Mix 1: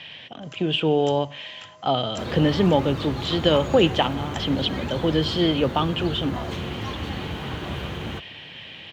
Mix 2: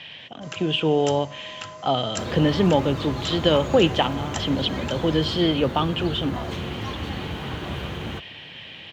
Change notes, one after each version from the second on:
first sound +9.5 dB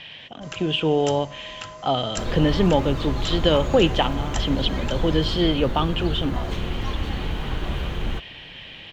master: remove HPF 78 Hz 24 dB/oct

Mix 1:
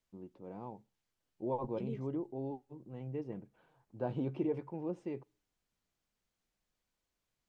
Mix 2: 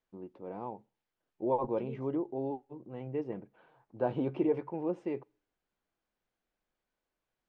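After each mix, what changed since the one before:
first voice +7.0 dB; master: add tone controls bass -8 dB, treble -10 dB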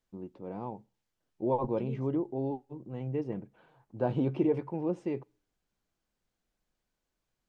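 master: add tone controls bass +8 dB, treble +10 dB

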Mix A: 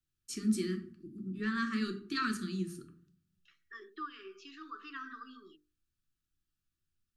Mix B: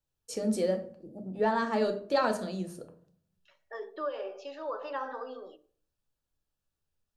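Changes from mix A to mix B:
second voice: send on; master: remove Chebyshev band-stop 370–1200 Hz, order 4

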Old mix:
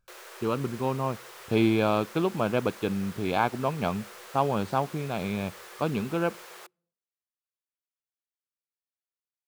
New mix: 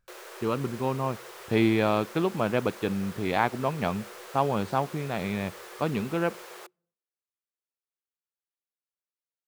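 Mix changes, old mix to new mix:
speech: remove Butterworth band-stop 1900 Hz, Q 4.1; background: add low shelf 480 Hz +9 dB

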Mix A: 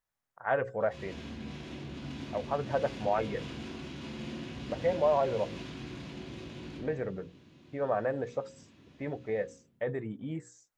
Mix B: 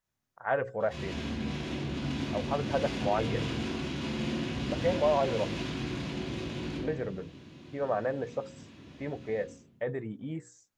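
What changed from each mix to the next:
second voice: send +11.5 dB; background +7.5 dB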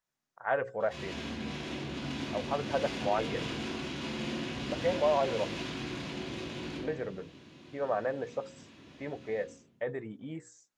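second voice: add Chebyshev band-pass 150–7500 Hz, order 2; master: add low shelf 220 Hz -8.5 dB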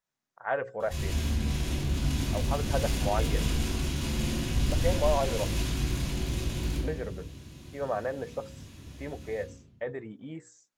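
background: remove BPF 240–3700 Hz

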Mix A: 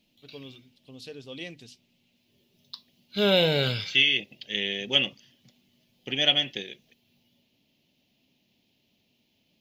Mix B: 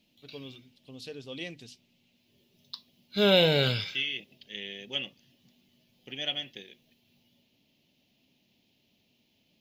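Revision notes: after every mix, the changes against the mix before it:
second voice -10.5 dB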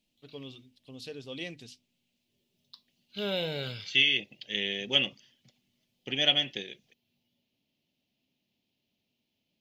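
second voice +8.0 dB; background -10.5 dB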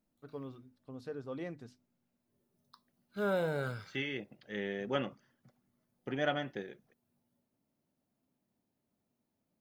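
background: remove running mean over 5 samples; master: add resonant high shelf 2000 Hz -13.5 dB, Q 3

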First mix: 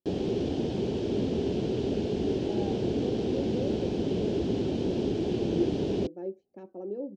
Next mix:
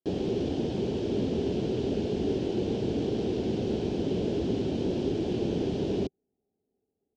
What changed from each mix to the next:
speech: muted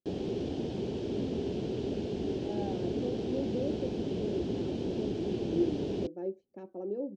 speech: unmuted; first sound -5.0 dB; second sound: add fixed phaser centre 1500 Hz, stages 4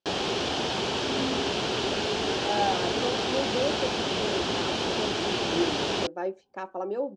second sound +8.0 dB; master: remove EQ curve 290 Hz 0 dB, 440 Hz -4 dB, 1200 Hz -27 dB, 2000 Hz -21 dB

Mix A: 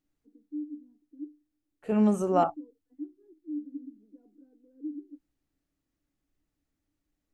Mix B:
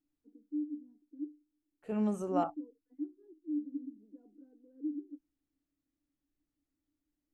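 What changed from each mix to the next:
second voice -8.5 dB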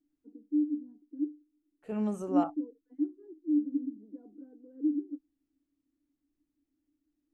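first voice +8.0 dB

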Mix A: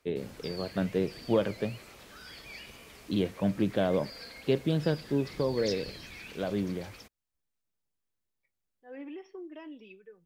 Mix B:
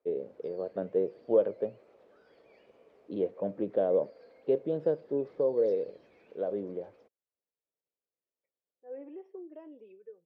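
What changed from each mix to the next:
first voice +4.5 dB; second voice +5.0 dB; master: add band-pass 500 Hz, Q 2.8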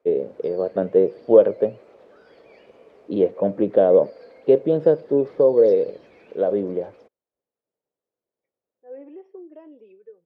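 first voice +12.0 dB; second voice +4.0 dB; background +10.5 dB

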